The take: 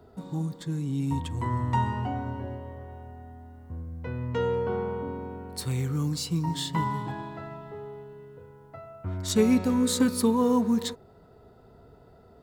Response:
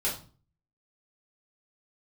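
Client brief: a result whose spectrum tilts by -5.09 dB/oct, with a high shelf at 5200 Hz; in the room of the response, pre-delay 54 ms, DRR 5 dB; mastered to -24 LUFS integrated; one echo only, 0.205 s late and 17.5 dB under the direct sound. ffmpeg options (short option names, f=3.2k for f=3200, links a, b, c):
-filter_complex "[0:a]highshelf=f=5.2k:g=7,aecho=1:1:205:0.133,asplit=2[a][b];[1:a]atrim=start_sample=2205,adelay=54[c];[b][c]afir=irnorm=-1:irlink=0,volume=-12dB[d];[a][d]amix=inputs=2:normalize=0,volume=2.5dB"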